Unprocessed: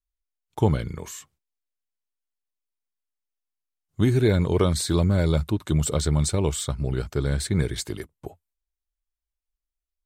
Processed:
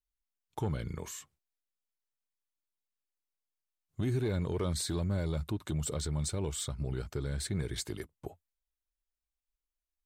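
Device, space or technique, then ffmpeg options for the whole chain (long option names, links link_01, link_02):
soft clipper into limiter: -af "asoftclip=type=tanh:threshold=-11.5dB,alimiter=limit=-20dB:level=0:latency=1:release=182,volume=-5dB"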